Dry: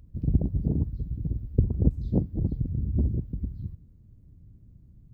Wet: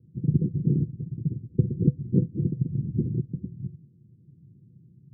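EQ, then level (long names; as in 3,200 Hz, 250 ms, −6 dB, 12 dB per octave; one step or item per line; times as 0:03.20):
high-pass filter 160 Hz 24 dB per octave
Chebyshev low-pass with heavy ripple 510 Hz, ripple 9 dB
spectral tilt −4.5 dB per octave
0.0 dB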